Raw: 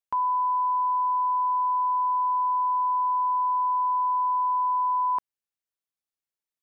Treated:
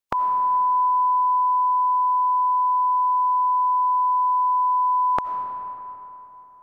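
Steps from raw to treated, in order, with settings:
ceiling on every frequency bin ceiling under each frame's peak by 23 dB
comb and all-pass reverb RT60 3.5 s, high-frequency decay 0.55×, pre-delay 45 ms, DRR 8 dB
level +4.5 dB

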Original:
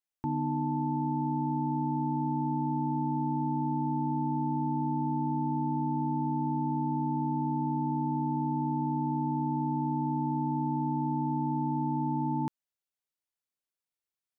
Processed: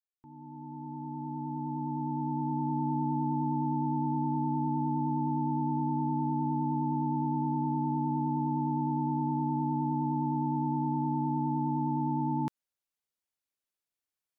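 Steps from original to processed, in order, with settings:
fade in at the beginning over 2.91 s
pitch vibrato 9.7 Hz 27 cents

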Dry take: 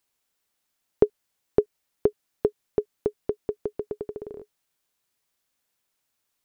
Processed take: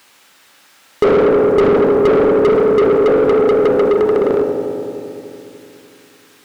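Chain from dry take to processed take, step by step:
parametric band 620 Hz −6 dB 1.8 octaves
on a send at −4.5 dB: high-pass filter 93 Hz + convolution reverb RT60 2.8 s, pre-delay 3 ms
on the sum: mid-hump overdrive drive 42 dB, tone 1,500 Hz, clips at −7 dBFS
level +4 dB

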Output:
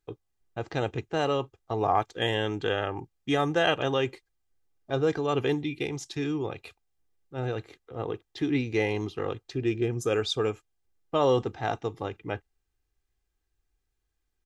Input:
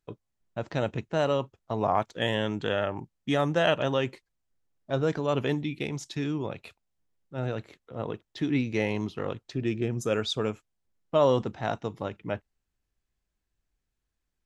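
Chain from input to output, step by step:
comb filter 2.5 ms, depth 54%

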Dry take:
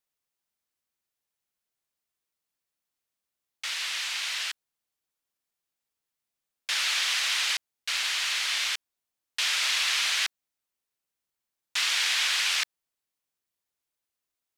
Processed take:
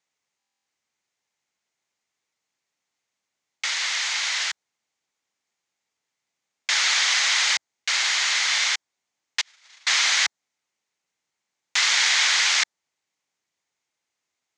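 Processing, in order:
dynamic equaliser 2,600 Hz, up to −6 dB, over −41 dBFS, Q 2.3
0:09.41–0:09.87: noise gate −23 dBFS, range −44 dB
loudspeaker in its box 110–7,300 Hz, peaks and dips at 840 Hz +4 dB, 2,100 Hz +6 dB, 6,600 Hz +5 dB
buffer that repeats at 0:00.38, samples 1,024, times 11
level +6.5 dB

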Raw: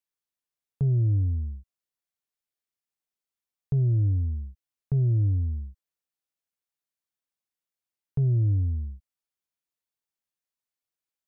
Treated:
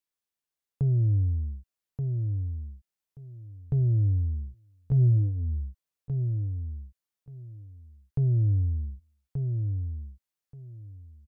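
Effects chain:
dynamic equaliser 250 Hz, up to −5 dB, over −40 dBFS, Q 1.5
on a send: repeating echo 1,180 ms, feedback 17%, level −5.5 dB

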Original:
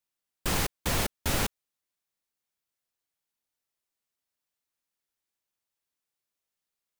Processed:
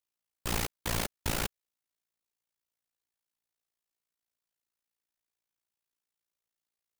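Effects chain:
amplitude modulation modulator 57 Hz, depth 85%

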